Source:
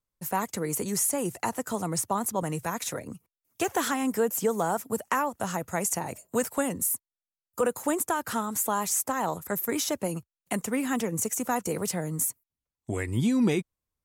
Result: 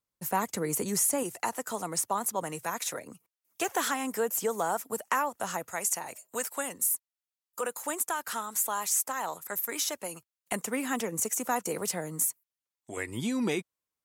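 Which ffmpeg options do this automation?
-af "asetnsamples=n=441:p=0,asendcmd='1.23 highpass f 550;5.71 highpass f 1200;10.52 highpass f 390;12.27 highpass f 970;12.97 highpass f 460',highpass=f=130:p=1"

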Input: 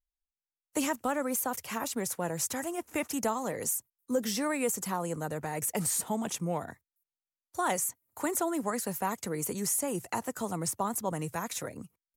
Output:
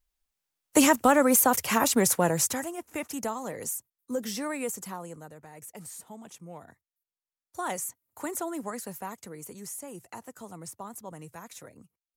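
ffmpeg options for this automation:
-af "volume=20.5dB,afade=t=out:st=2.13:d=0.59:silence=0.237137,afade=t=out:st=4.58:d=0.77:silence=0.281838,afade=t=in:st=6.44:d=1.15:silence=0.316228,afade=t=out:st=8.58:d=0.82:silence=0.473151"

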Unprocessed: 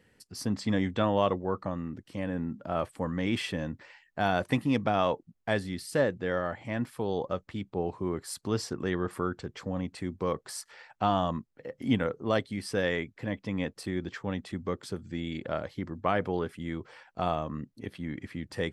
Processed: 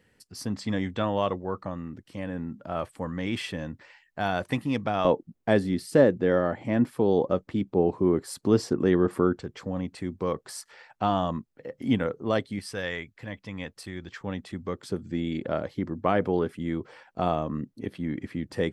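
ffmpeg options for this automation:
-af "asetnsamples=n=441:p=0,asendcmd='5.05 equalizer g 10.5;9.36 equalizer g 2.5;12.59 equalizer g -7;14.21 equalizer g 0;14.9 equalizer g 6.5',equalizer=f=300:t=o:w=2.5:g=-1"

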